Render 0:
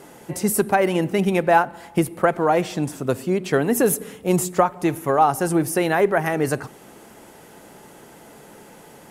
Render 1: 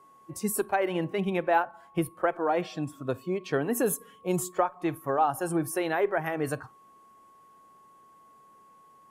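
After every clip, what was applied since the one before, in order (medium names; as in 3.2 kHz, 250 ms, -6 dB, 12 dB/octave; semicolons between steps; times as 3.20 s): spectral noise reduction 13 dB; whistle 1.1 kHz -46 dBFS; trim -8 dB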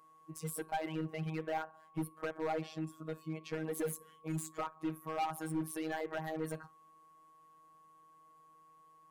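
robot voice 158 Hz; hard clipper -24.5 dBFS, distortion -9 dB; trim -6 dB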